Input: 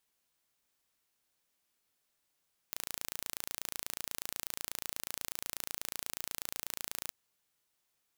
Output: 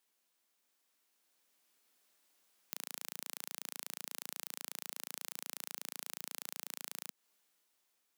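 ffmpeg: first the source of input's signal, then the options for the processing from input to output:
-f lavfi -i "aevalsrc='0.316*eq(mod(n,1564),0)':d=4.38:s=44100"
-af "dynaudnorm=f=400:g=7:m=2.24,highpass=f=190:w=0.5412,highpass=f=190:w=1.3066,acompressor=threshold=0.0112:ratio=3"

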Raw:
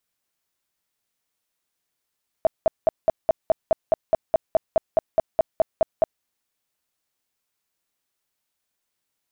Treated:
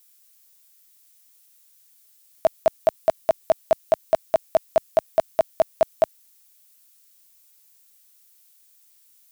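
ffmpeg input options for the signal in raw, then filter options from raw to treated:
-f lavfi -i "aevalsrc='0.237*sin(2*PI*648*mod(t,0.21))*lt(mod(t,0.21),12/648)':d=3.78:s=44100"
-af "highpass=f=74:p=1,crystalizer=i=9:c=0"

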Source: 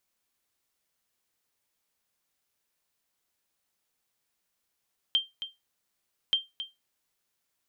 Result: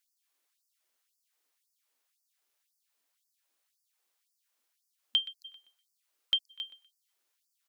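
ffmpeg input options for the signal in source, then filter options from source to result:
-f lavfi -i "aevalsrc='0.15*(sin(2*PI*3160*mod(t,1.18))*exp(-6.91*mod(t,1.18)/0.2)+0.266*sin(2*PI*3160*max(mod(t,1.18)-0.27,0))*exp(-6.91*max(mod(t,1.18)-0.27,0)/0.2))':d=2.36:s=44100"
-filter_complex "[0:a]asplit=2[s0][s1];[s1]adelay=123,lowpass=f=2900:p=1,volume=0.224,asplit=2[s2][s3];[s3]adelay=123,lowpass=f=2900:p=1,volume=0.36,asplit=2[s4][s5];[s5]adelay=123,lowpass=f=2900:p=1,volume=0.36,asplit=2[s6][s7];[s7]adelay=123,lowpass=f=2900:p=1,volume=0.36[s8];[s0][s2][s4][s6][s8]amix=inputs=5:normalize=0,afftfilt=real='re*gte(b*sr/1024,210*pow(4600/210,0.5+0.5*sin(2*PI*1.9*pts/sr)))':imag='im*gte(b*sr/1024,210*pow(4600/210,0.5+0.5*sin(2*PI*1.9*pts/sr)))':win_size=1024:overlap=0.75"

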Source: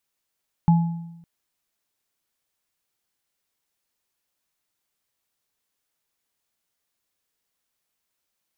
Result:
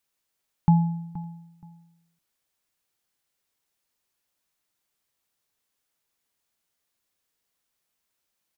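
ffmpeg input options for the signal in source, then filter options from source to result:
-f lavfi -i "aevalsrc='0.282*pow(10,-3*t/0.94)*sin(2*PI*168*t)+0.0794*pow(10,-3*t/0.63)*sin(2*PI*848*t)':d=0.56:s=44100"
-filter_complex "[0:a]asplit=2[s0][s1];[s1]adelay=474,lowpass=f=2000:p=1,volume=0.158,asplit=2[s2][s3];[s3]adelay=474,lowpass=f=2000:p=1,volume=0.23[s4];[s0][s2][s4]amix=inputs=3:normalize=0"

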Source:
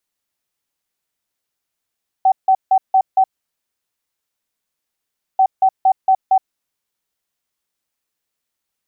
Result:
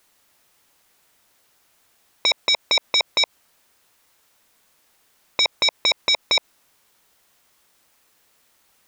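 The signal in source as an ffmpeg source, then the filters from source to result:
-f lavfi -i "aevalsrc='0.376*sin(2*PI*763*t)*clip(min(mod(mod(t,3.14),0.23),0.07-mod(mod(t,3.14),0.23))/0.005,0,1)*lt(mod(t,3.14),1.15)':d=6.28:s=44100"
-af "equalizer=f=940:t=o:w=2.9:g=4,alimiter=limit=0.224:level=0:latency=1:release=78,aeval=exprs='0.224*sin(PI/2*4.47*val(0)/0.224)':c=same"

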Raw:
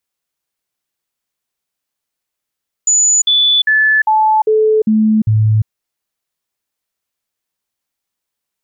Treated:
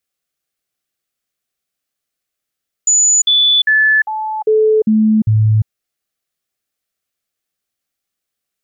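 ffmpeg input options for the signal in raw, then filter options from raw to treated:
-f lavfi -i "aevalsrc='0.398*clip(min(mod(t,0.4),0.35-mod(t,0.4))/0.005,0,1)*sin(2*PI*6940*pow(2,-floor(t/0.4)/1)*mod(t,0.4))':d=2.8:s=44100"
-af "asuperstop=centerf=940:order=4:qfactor=3.7"

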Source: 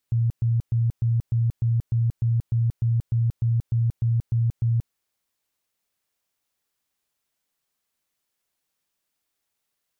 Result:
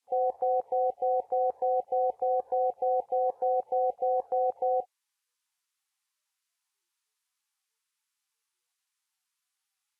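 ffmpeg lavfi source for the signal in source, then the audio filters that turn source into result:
-f lavfi -i "aevalsrc='0.126*sin(2*PI*116*mod(t,0.3))*lt(mod(t,0.3),21/116)':d=4.8:s=44100"
-af "highpass=100,aeval=exprs='val(0)*sin(2*PI*630*n/s)':c=same" -ar 32000 -c:a libvorbis -b:a 32k

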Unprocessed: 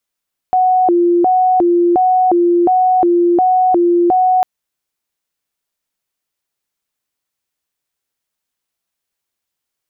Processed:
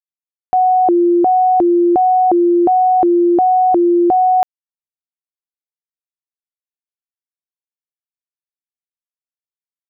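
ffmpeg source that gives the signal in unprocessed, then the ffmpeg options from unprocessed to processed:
-f lavfi -i "aevalsrc='0.376*sin(2*PI*(543.5*t+196.5/1.4*(0.5-abs(mod(1.4*t,1)-0.5))))':d=3.9:s=44100"
-af "acrusher=bits=10:mix=0:aa=0.000001"

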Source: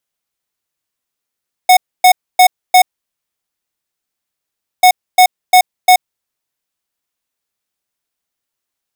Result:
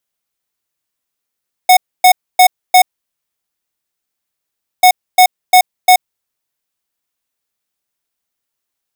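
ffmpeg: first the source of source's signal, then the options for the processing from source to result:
-f lavfi -i "aevalsrc='0.531*(2*lt(mod(734*t,1),0.5)-1)*clip(min(mod(mod(t,3.14),0.35),0.08-mod(mod(t,3.14),0.35))/0.005,0,1)*lt(mod(t,3.14),1.4)':d=6.28:s=44100"
-af "highshelf=f=12000:g=3.5"

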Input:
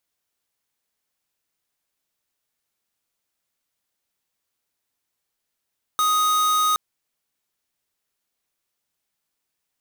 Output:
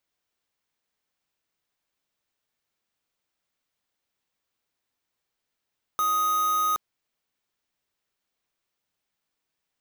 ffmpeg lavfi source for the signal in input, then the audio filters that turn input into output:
-f lavfi -i "aevalsrc='0.106*(2*lt(mod(1250*t,1),0.5)-1)':d=0.77:s=44100"
-filter_complex "[0:a]equalizer=f=12000:w=0.59:g=-9.5,acrossover=split=1500[s0][s1];[s1]aeval=exprs='(mod(26.6*val(0)+1,2)-1)/26.6':c=same[s2];[s0][s2]amix=inputs=2:normalize=0"

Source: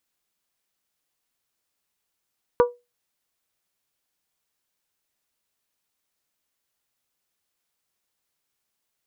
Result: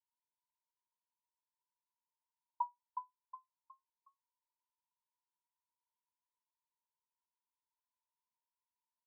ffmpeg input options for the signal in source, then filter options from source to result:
-f lavfi -i "aevalsrc='0.316*pow(10,-3*t/0.23)*sin(2*PI*485*t)+0.158*pow(10,-3*t/0.142)*sin(2*PI*970*t)+0.0794*pow(10,-3*t/0.125)*sin(2*PI*1164*t)+0.0398*pow(10,-3*t/0.107)*sin(2*PI*1455*t)':d=0.89:s=44100"
-filter_complex "[0:a]acompressor=threshold=0.0631:ratio=6,asuperpass=centerf=950:order=8:qfactor=7.5,asplit=5[s0][s1][s2][s3][s4];[s1]adelay=365,afreqshift=32,volume=0.501[s5];[s2]adelay=730,afreqshift=64,volume=0.176[s6];[s3]adelay=1095,afreqshift=96,volume=0.0617[s7];[s4]adelay=1460,afreqshift=128,volume=0.0214[s8];[s0][s5][s6][s7][s8]amix=inputs=5:normalize=0"

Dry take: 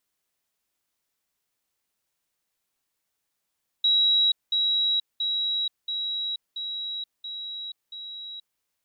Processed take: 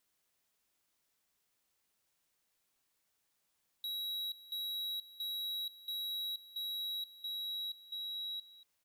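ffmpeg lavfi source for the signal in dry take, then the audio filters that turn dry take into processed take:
-f lavfi -i "aevalsrc='pow(10,(-17.5-3*floor(t/0.68))/20)*sin(2*PI*3870*t)*clip(min(mod(t,0.68),0.48-mod(t,0.68))/0.005,0,1)':d=4.76:s=44100"
-af "alimiter=level_in=1.58:limit=0.0631:level=0:latency=1:release=49,volume=0.631,asoftclip=type=tanh:threshold=0.0119,aecho=1:1:232:0.15"

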